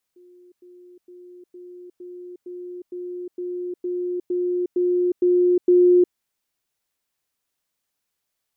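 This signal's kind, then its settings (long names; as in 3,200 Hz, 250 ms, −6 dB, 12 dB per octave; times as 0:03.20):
level staircase 357 Hz −47 dBFS, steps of 3 dB, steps 13, 0.36 s 0.10 s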